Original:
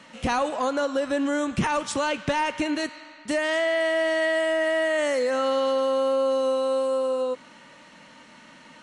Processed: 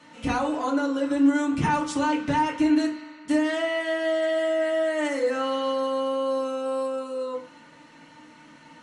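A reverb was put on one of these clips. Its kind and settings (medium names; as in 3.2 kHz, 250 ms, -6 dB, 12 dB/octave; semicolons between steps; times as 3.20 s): FDN reverb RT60 0.35 s, low-frequency decay 1.5×, high-frequency decay 0.6×, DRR -4 dB; trim -7.5 dB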